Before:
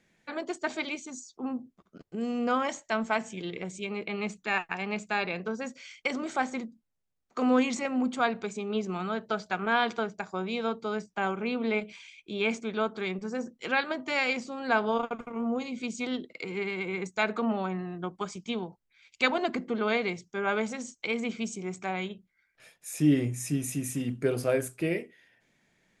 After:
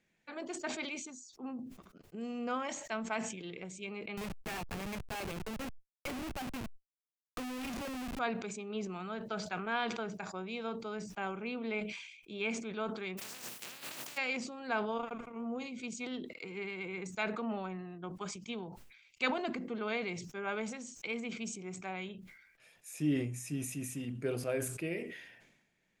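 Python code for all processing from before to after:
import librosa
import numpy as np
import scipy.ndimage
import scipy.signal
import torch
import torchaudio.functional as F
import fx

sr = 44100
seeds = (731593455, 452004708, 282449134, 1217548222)

y = fx.chain(x, sr, fx.notch(hz=7800.0, q=8.4),
    fx.schmitt(flips_db=-35.0),
    fx.band_squash(depth_pct=40), at=(4.17, 8.19))
y = fx.spec_flatten(y, sr, power=0.14, at=(13.17, 14.16), fade=0.02)
y = fx.over_compress(y, sr, threshold_db=-41.0, ratio=-1.0, at=(13.17, 14.16), fade=0.02)
y = fx.highpass(y, sr, hz=110.0, slope=24, at=(13.17, 14.16), fade=0.02)
y = fx.peak_eq(y, sr, hz=2600.0, db=4.0, octaves=0.34)
y = fx.sustainer(y, sr, db_per_s=55.0)
y = F.gain(torch.from_numpy(y), -9.0).numpy()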